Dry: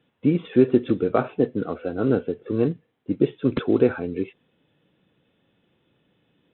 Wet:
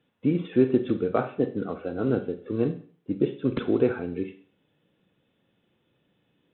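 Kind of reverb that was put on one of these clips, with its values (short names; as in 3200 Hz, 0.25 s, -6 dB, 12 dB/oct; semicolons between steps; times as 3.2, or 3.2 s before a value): Schroeder reverb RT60 0.43 s, combs from 31 ms, DRR 9.5 dB; gain -4 dB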